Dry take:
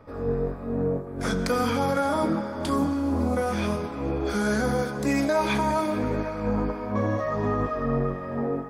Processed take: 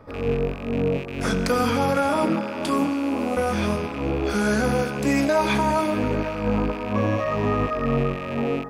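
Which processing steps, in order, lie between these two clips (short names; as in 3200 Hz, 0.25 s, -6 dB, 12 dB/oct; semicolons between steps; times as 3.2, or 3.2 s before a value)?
rattling part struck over -40 dBFS, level -29 dBFS; 2.08–3.36 HPF 110 Hz -> 280 Hz 12 dB/oct; gain +3 dB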